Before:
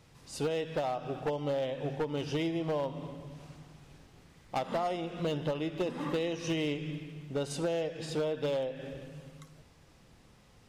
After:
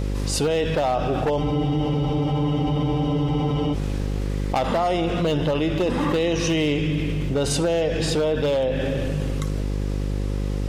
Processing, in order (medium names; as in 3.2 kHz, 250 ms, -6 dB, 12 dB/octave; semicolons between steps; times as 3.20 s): mains buzz 50 Hz, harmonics 11, -46 dBFS -6 dB/octave; spectral freeze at 1.43 s, 2.29 s; level flattener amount 70%; trim +8.5 dB